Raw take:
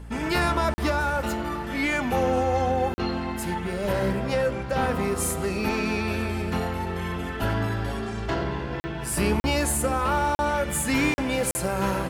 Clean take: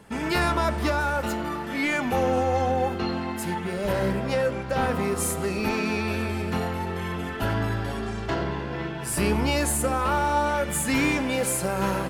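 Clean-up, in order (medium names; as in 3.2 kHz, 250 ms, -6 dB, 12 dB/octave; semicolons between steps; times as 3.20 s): de-hum 57.5 Hz, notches 5; interpolate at 0.74/2.94/8.80/9.40/10.35/11.14/11.51 s, 40 ms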